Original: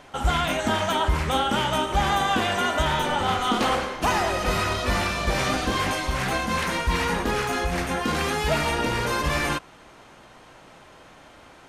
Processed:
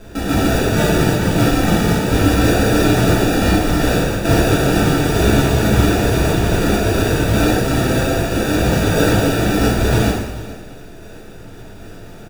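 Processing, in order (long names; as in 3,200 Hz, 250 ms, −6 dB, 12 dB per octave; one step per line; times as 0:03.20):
time-frequency cells dropped at random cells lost 26%
Butterworth low-pass 8,300 Hz 36 dB per octave
spectral tilt +4.5 dB per octave
in parallel at −1.5 dB: brickwall limiter −18 dBFS, peak gain reduction 9 dB
on the sum: steady tone 3,300 Hz −34 dBFS
speed change −5%
decimation without filtering 42×
on a send: single-tap delay 427 ms −18 dB
on the sum: coupled-rooms reverb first 0.91 s, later 2.8 s, from −23 dB, DRR −9 dB
level −4 dB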